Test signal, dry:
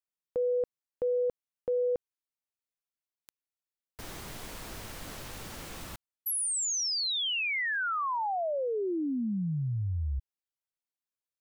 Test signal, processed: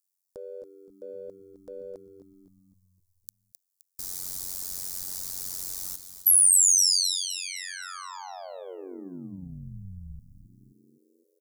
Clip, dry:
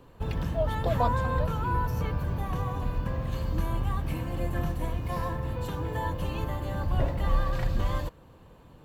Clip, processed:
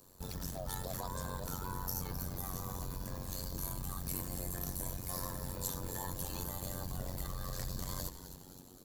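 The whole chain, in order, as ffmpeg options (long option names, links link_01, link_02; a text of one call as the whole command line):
ffmpeg -i in.wav -filter_complex "[0:a]acompressor=threshold=-28dB:ratio=6:attack=1.4:release=21:knee=1:detection=rms,aexciter=amount=7.1:drive=8.5:freq=4300,asplit=7[link_01][link_02][link_03][link_04][link_05][link_06][link_07];[link_02]adelay=260,afreqshift=-100,volume=-11dB[link_08];[link_03]adelay=520,afreqshift=-200,volume=-16dB[link_09];[link_04]adelay=780,afreqshift=-300,volume=-21.1dB[link_10];[link_05]adelay=1040,afreqshift=-400,volume=-26.1dB[link_11];[link_06]adelay=1300,afreqshift=-500,volume=-31.1dB[link_12];[link_07]adelay=1560,afreqshift=-600,volume=-36.2dB[link_13];[link_01][link_08][link_09][link_10][link_11][link_12][link_13]amix=inputs=7:normalize=0,tremolo=f=92:d=0.919,volume=-6dB" out.wav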